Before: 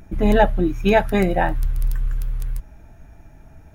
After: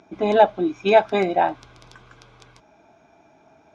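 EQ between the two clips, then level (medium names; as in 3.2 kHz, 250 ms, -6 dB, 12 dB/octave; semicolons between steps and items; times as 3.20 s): cabinet simulation 500–4900 Hz, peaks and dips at 520 Hz -9 dB, 880 Hz -4 dB, 1.3 kHz -7 dB, 1.9 kHz -5 dB, 2.8 kHz -9 dB, 4.4 kHz -7 dB; peaking EQ 1.8 kHz -14.5 dB 0.22 oct; +7.5 dB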